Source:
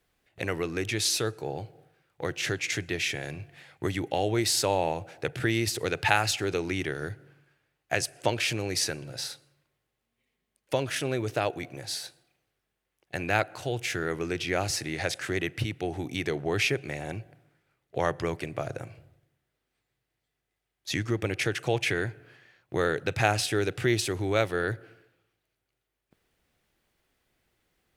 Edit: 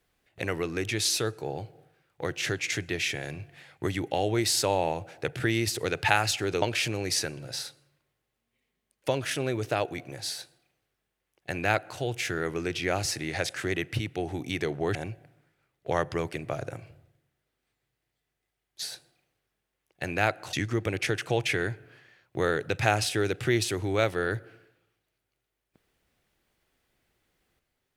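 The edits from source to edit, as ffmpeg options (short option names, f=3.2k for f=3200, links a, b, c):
-filter_complex "[0:a]asplit=5[a][b][c][d][e];[a]atrim=end=6.622[f];[b]atrim=start=8.268:end=16.602[g];[c]atrim=start=17.028:end=20.902[h];[d]atrim=start=11.938:end=13.652[i];[e]atrim=start=20.898[j];[f][g]acrossfade=d=0.004:c1=hsin:c2=hsin[k];[k][h]acrossfade=d=0.004:c1=hsin:c2=hsin[l];[l][i]acrossfade=d=0.004:c1=hsin:c2=hsin[m];[m][j]acrossfade=d=0.004:c1=hsin:c2=hsin"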